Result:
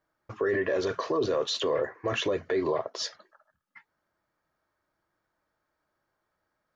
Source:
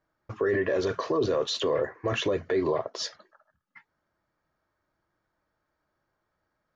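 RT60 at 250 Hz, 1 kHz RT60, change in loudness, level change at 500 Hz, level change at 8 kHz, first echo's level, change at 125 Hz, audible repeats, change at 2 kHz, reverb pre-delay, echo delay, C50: no reverb audible, no reverb audible, −1.0 dB, −1.0 dB, can't be measured, no echo audible, −4.5 dB, no echo audible, 0.0 dB, no reverb audible, no echo audible, no reverb audible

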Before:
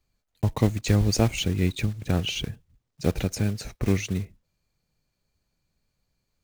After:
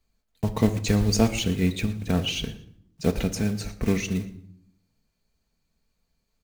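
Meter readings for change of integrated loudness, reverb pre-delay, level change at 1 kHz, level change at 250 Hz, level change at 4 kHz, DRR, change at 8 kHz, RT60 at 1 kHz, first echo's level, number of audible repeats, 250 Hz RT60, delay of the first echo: +0.5 dB, 4 ms, +1.0 dB, +2.5 dB, +1.0 dB, 5.5 dB, +1.0 dB, 0.65 s, −18.5 dB, 2, 1.1 s, 117 ms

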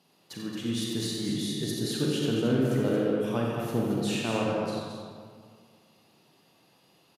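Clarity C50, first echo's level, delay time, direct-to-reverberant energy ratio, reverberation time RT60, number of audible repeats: −3.0 dB, −7.0 dB, 89 ms, −4.0 dB, 2.0 s, 2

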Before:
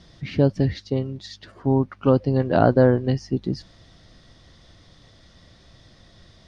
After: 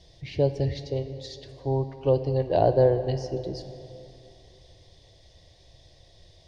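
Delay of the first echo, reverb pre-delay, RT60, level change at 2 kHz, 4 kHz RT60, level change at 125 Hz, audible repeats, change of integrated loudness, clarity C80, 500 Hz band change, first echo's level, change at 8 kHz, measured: no echo audible, 12 ms, 3.0 s, −12.0 dB, 2.2 s, −5.0 dB, no echo audible, −4.5 dB, 11.5 dB, −2.0 dB, no echo audible, can't be measured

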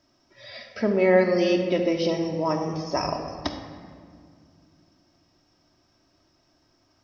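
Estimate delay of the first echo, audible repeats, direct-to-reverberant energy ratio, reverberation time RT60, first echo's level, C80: no echo audible, no echo audible, 2.0 dB, 2.1 s, no echo audible, 7.0 dB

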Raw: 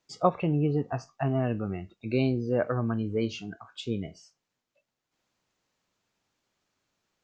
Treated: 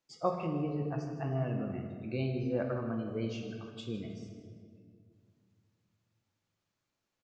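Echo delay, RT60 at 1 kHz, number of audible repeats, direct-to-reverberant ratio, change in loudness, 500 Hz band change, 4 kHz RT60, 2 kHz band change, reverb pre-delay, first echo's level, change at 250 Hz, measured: 158 ms, 1.7 s, 1, 2.5 dB, −6.5 dB, −6.5 dB, 1.3 s, −7.5 dB, 4 ms, −12.5 dB, −6.5 dB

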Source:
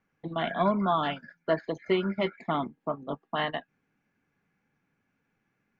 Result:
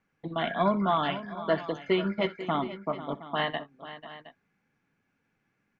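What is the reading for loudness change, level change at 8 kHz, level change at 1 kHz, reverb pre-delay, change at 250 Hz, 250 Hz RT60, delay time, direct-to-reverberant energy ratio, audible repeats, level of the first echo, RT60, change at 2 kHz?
+0.5 dB, can't be measured, +0.5 dB, no reverb audible, 0.0 dB, no reverb audible, 64 ms, no reverb audible, 3, −19.5 dB, no reverb audible, +1.0 dB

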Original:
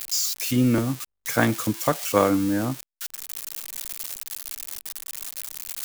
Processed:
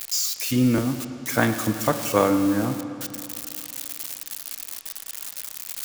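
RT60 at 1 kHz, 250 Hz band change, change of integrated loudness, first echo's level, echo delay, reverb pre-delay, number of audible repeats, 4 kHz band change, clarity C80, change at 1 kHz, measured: 2.8 s, +1.0 dB, +0.5 dB, no echo audible, no echo audible, 23 ms, no echo audible, +0.5 dB, 9.5 dB, +0.5 dB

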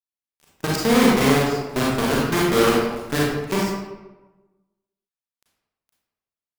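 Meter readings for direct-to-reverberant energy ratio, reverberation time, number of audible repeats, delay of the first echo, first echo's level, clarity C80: −5.5 dB, 1.1 s, no echo audible, no echo audible, no echo audible, 2.0 dB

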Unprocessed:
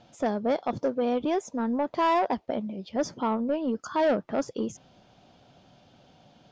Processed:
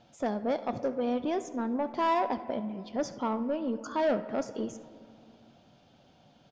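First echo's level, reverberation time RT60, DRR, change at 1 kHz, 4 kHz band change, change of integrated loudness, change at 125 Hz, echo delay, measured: −19.0 dB, 2.3 s, 11.5 dB, −3.5 dB, −4.0 dB, −3.5 dB, −3.5 dB, 71 ms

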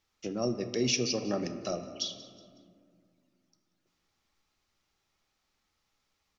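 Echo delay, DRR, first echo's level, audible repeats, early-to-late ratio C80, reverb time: 184 ms, 8.0 dB, −19.0 dB, 3, 10.5 dB, 2.2 s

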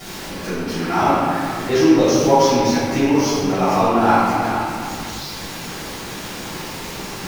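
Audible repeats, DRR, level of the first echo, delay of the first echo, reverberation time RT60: no echo audible, −14.5 dB, no echo audible, no echo audible, 2.2 s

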